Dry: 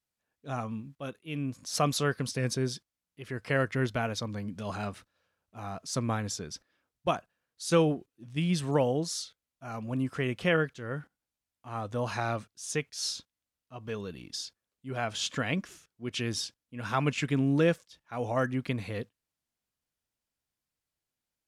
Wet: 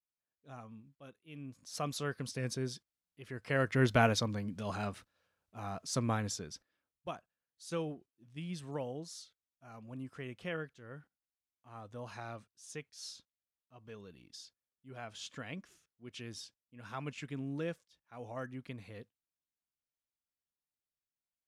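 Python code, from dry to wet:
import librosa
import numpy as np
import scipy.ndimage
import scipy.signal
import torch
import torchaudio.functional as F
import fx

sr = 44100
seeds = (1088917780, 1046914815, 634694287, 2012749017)

y = fx.gain(x, sr, db=fx.line((1.16, -15.0), (2.35, -7.0), (3.42, -7.0), (4.03, 5.0), (4.44, -2.5), (6.24, -2.5), (7.08, -13.5)))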